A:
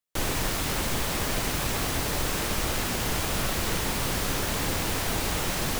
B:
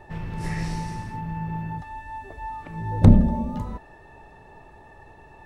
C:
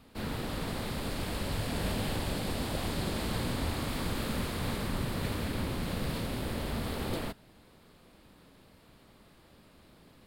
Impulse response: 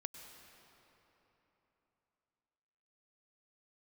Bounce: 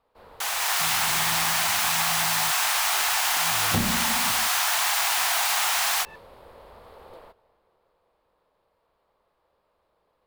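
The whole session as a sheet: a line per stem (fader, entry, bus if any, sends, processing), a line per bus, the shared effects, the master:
+2.0 dB, 0.25 s, no send, steep high-pass 690 Hz 72 dB/oct; AGC gain up to 10.5 dB
-0.5 dB, 0.70 s, no send, weighting filter D
-19.5 dB, 0.00 s, send -8 dB, graphic EQ 125/250/500/1000/8000 Hz -6/-10/+11/+11/-5 dB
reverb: on, RT60 3.6 s, pre-delay 92 ms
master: compressor 4:1, threshold -21 dBFS, peak gain reduction 9.5 dB

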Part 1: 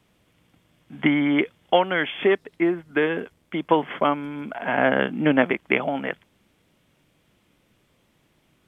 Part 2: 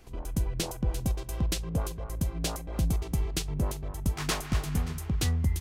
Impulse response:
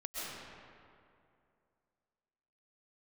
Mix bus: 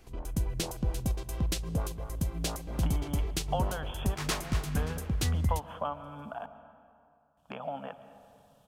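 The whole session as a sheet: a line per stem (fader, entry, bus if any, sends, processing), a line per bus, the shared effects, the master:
+0.5 dB, 1.80 s, muted 6.46–7.37, send -13 dB, compressor 2:1, threshold -39 dBFS, peak gain reduction 14.5 dB; fixed phaser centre 850 Hz, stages 4
-2.0 dB, 0.00 s, send -23 dB, dry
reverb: on, RT60 2.5 s, pre-delay 90 ms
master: dry

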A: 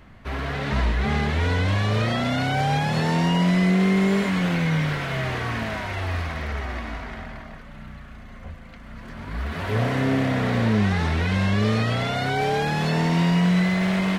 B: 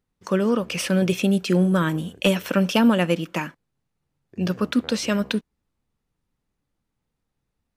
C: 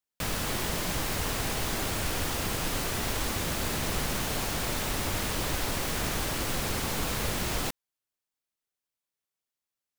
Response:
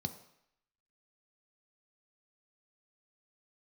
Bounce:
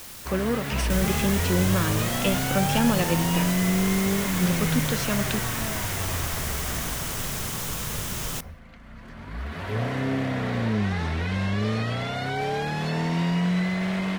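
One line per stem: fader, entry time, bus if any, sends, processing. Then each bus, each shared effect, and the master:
-4.5 dB, 0.00 s, no send, dry
-5.5 dB, 0.00 s, no send, requantised 6-bit, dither triangular
-2.5 dB, 0.70 s, send -13 dB, high shelf 4300 Hz +7 dB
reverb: on, RT60 0.75 s, pre-delay 3 ms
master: dry

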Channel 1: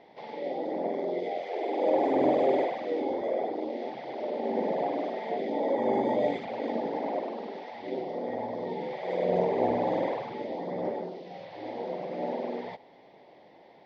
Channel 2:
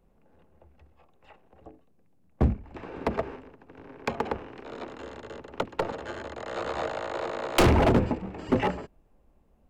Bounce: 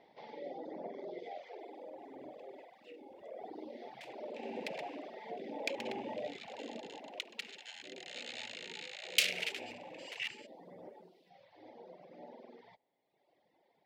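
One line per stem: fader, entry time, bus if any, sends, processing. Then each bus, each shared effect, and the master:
1.38 s -8.5 dB -> 1.89 s -19 dB -> 3.12 s -19 dB -> 3.51 s -8.5 dB -> 6.52 s -8.5 dB -> 7.28 s -16 dB, 0.00 s, no send, high shelf 3700 Hz +9.5 dB; compressor 1.5:1, threshold -32 dBFS, peak gain reduction 5 dB; reverb removal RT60 1.5 s
+3.0 dB, 1.60 s, no send, steep high-pass 2300 Hz 36 dB/oct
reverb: off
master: high shelf 4300 Hz -5.5 dB

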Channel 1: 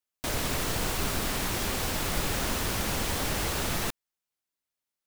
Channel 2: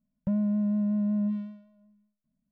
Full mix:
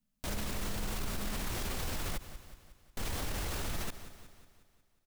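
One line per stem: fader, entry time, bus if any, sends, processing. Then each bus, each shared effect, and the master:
+1.0 dB, 0.00 s, muted 2.18–2.97, no send, echo send -23.5 dB, dry
-6.5 dB, 0.00 s, no send, no echo send, steep low-pass 680 Hz 96 dB/oct; compressor, threshold -30 dBFS, peak gain reduction 6 dB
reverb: off
echo: feedback echo 0.181 s, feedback 54%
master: low shelf 72 Hz +11.5 dB; limiter -27.5 dBFS, peak gain reduction 16.5 dB

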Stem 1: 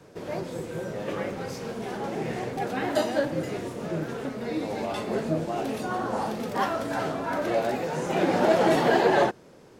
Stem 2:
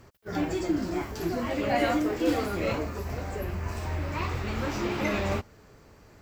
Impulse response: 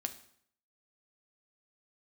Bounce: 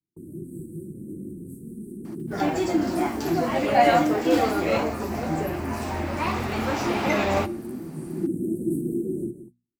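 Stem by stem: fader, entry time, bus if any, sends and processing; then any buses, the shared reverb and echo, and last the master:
-1.5 dB, 0.00 s, send -8.5 dB, echo send -10.5 dB, Chebyshev band-stop 350–8500 Hz, order 5
+1.0 dB, 2.05 s, send -4.5 dB, no echo send, HPF 140 Hz 6 dB/oct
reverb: on, RT60 0.65 s, pre-delay 4 ms
echo: echo 0.174 s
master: gate -44 dBFS, range -36 dB; bell 770 Hz +6 dB 0.56 oct; notches 60/120/180/240 Hz

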